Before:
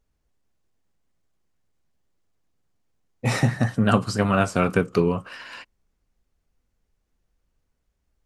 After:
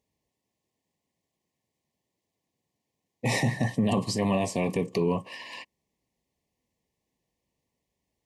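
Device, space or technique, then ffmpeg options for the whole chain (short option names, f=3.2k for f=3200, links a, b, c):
PA system with an anti-feedback notch: -af "highpass=130,asuperstop=centerf=1400:order=12:qfactor=2.3,alimiter=limit=-16.5dB:level=0:latency=1:release=22"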